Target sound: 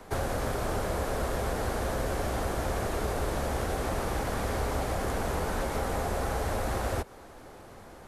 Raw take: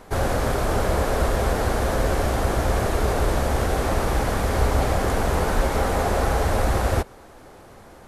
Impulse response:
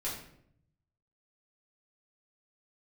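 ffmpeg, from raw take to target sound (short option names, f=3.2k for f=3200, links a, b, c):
-filter_complex "[0:a]acrossover=split=87|190|6600[a][b][c][d];[a]acompressor=threshold=-32dB:ratio=4[e];[b]acompressor=threshold=-37dB:ratio=4[f];[c]acompressor=threshold=-28dB:ratio=4[g];[d]acompressor=threshold=-44dB:ratio=4[h];[e][f][g][h]amix=inputs=4:normalize=0,volume=-2.5dB"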